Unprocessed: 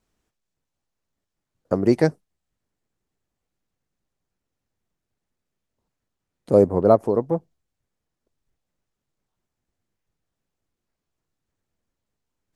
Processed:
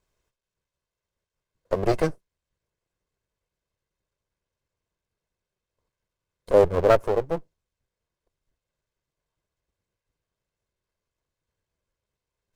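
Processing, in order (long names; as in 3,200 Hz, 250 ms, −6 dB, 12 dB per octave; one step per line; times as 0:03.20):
lower of the sound and its delayed copy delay 1.9 ms
IMA ADPCM 176 kbit/s 44,100 Hz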